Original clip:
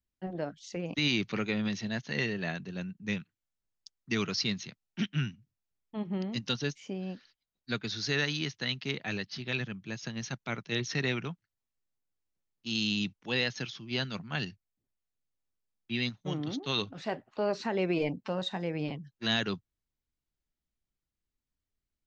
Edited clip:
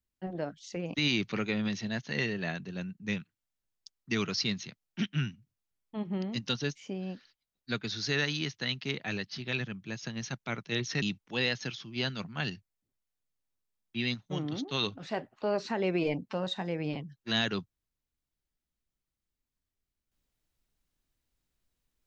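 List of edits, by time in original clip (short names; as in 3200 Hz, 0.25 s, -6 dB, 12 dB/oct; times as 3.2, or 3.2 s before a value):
11.02–12.97 cut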